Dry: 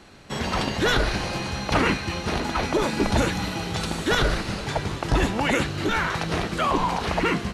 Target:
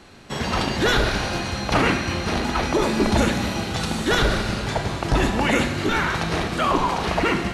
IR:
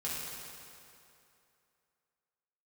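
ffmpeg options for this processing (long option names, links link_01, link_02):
-filter_complex "[0:a]asplit=2[link_01][link_02];[1:a]atrim=start_sample=2205,asetrate=66150,aresample=44100,adelay=32[link_03];[link_02][link_03]afir=irnorm=-1:irlink=0,volume=-6.5dB[link_04];[link_01][link_04]amix=inputs=2:normalize=0,volume=1.5dB"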